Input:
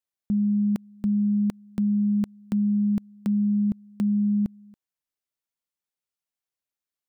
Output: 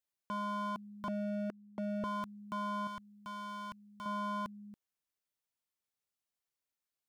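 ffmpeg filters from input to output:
-filter_complex "[0:a]asettb=1/sr,asplit=3[s0][s1][s2];[s0]atrim=end=1.084[s3];[s1]atrim=start=1.08:end=2.04,asetpts=PTS-STARTPTS,afade=t=in:d=0.004:c=qsin,afade=t=out:st=0.956:d=0.004:c=qsin,bandpass=f=450:t=q:w=1.2:csg=0[s4];[s2]atrim=start=2.036[s5];[s3][s4]acrossfade=d=0.004:c1=hsin:c2=qsin[s6];[s6][s5]acrossfade=d=0.004:c1=qsin:c2=hsin,aeval=exprs='0.0299*(abs(mod(val(0)/0.0299+3,4)-2)-1)':c=same,asettb=1/sr,asplit=3[s7][s8][s9];[s7]atrim=end=2.874[s10];[s8]atrim=start=2.87:end=4.06,asetpts=PTS-STARTPTS,afade=t=in:d=0.004:c=qsin,afade=t=out:st=1.186:d=0.004:c=qsin,equalizer=f=400:w=0.6:g=-14.5[s11];[s9]atrim=start=4.056[s12];[s10][s11]acrossfade=d=0.004:c1=hsin:c2=qsin[s13];[s13][s12]acrossfade=d=0.004:c1=qsin:c2=hsin,volume=0.841"

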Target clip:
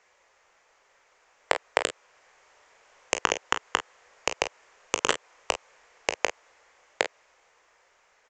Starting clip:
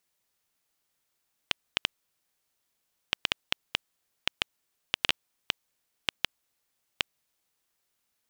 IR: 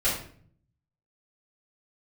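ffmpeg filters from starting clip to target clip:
-filter_complex "[0:a]acrossover=split=230|1100[s0][s1][s2];[s0]acompressor=threshold=0.00126:ratio=4[s3];[s1]acompressor=threshold=0.00891:ratio=4[s4];[s2]acompressor=threshold=0.0398:ratio=4[s5];[s3][s4][s5]amix=inputs=3:normalize=0,asplit=2[s6][s7];[s7]alimiter=limit=0.112:level=0:latency=1,volume=1[s8];[s6][s8]amix=inputs=2:normalize=0,dynaudnorm=f=440:g=9:m=3.76,aresample=16000,aeval=exprs='0.168*(abs(mod(val(0)/0.168+3,4)-2)-1)':c=same,aresample=44100,equalizer=f=125:t=o:w=1:g=-9,equalizer=f=250:t=o:w=1:g=-9,equalizer=f=500:t=o:w=1:g=11,equalizer=f=1000:t=o:w=1:g=7,equalizer=f=2000:t=o:w=1:g=8,equalizer=f=4000:t=o:w=1:g=-7,aecho=1:1:20|37|49:0.237|0.237|0.237,volume=2.51"

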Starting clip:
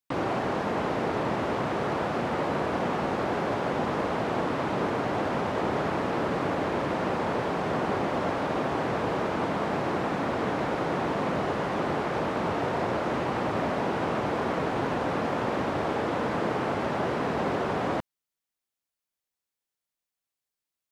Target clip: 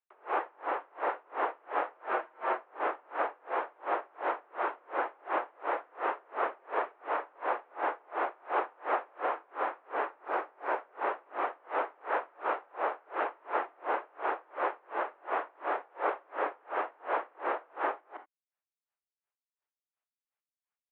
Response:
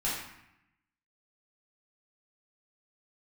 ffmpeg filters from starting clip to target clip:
-filter_complex "[0:a]asettb=1/sr,asplit=3[s0][s1][s2];[s0]atrim=end=1.954[s3];[s1]atrim=start=1.95:end=2.58,asetpts=PTS-STARTPTS,afade=t=in:d=0.004:c=qsin,afade=t=out:st=0.626:d=0.004:c=qsin,aecho=1:1:7.3:0.85,atrim=end_sample=27783[s4];[s2]atrim=start=2.576[s5];[s3][s4]acrossfade=d=0.004:c1=hsin:c2=qsin[s6];[s6][s5]acrossfade=d=0.004:c1=qsin:c2=hsin,highpass=f=220:t=q:w=0.5412,highpass=f=220:t=q:w=1.307,lowpass=f=3500:t=q:w=0.5176,lowpass=f=3500:t=q:w=0.7071,lowpass=f=3500:t=q:w=1.932,afreqshift=91,asettb=1/sr,asplit=3[s7][s8][s9];[s7]atrim=end=8.364[s10];[s8]atrim=start=8.36:end=9.26,asetpts=PTS-STARTPTS,afade=t=in:d=0.004:c=qsin,afade=t=out:st=0.896:d=0.004:c=qsin,acontrast=39[s11];[s9]atrim=start=9.256[s12];[s10][s11]acrossfade=d=0.004:c1=hsin:c2=qsin[s13];[s13][s12]acrossfade=d=0.004:c1=qsin:c2=hsin,alimiter=limit=0.106:level=0:latency=1:release=190,asettb=1/sr,asplit=3[s14][s15][s16];[s14]atrim=end=10.164[s17];[s15]atrim=start=10.16:end=10.79,asetpts=PTS-STARTPTS,afade=t=in:d=0.004:c=qsin,afade=t=out:st=0.626:d=0.004:c=qsin,adynamicsmooth=sensitivity=6:basefreq=2800[s18];[s16]atrim=start=10.786[s19];[s17][s18]acrossfade=d=0.004:c1=hsin:c2=qsin[s20];[s20][s19]acrossfade=d=0.004:c1=qsin:c2=hsin,acrossover=split=540 2300:gain=0.2 1 0.0794[s21][s22][s23];[s21][s22][s23]amix=inputs=3:normalize=0,aecho=1:1:165:0.668,asplit=2[s24][s25];[1:a]atrim=start_sample=2205,atrim=end_sample=3969[s26];[s25][s26]afir=irnorm=-1:irlink=0,volume=0.106[s27];[s24][s27]amix=inputs=2:normalize=0,aeval=exprs='val(0)*pow(10,-35*(0.5-0.5*cos(2*PI*2.8*n/s))/20)':c=same,volume=1.33"

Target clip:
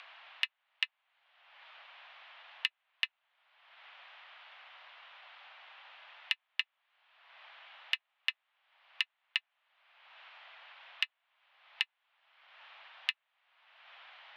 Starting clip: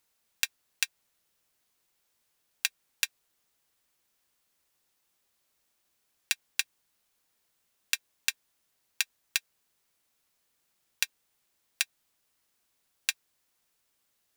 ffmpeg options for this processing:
-af "highpass=f=470:t=q:w=0.5412,highpass=f=470:t=q:w=1.307,lowpass=f=3100:t=q:w=0.5176,lowpass=f=3100:t=q:w=0.7071,lowpass=f=3100:t=q:w=1.932,afreqshift=200,acompressor=mode=upward:threshold=0.0282:ratio=2.5"

